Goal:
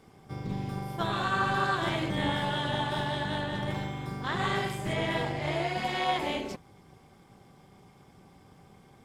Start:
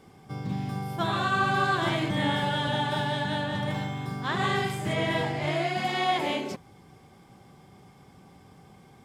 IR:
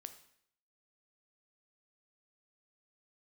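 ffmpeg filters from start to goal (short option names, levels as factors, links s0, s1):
-af "tremolo=f=220:d=0.621"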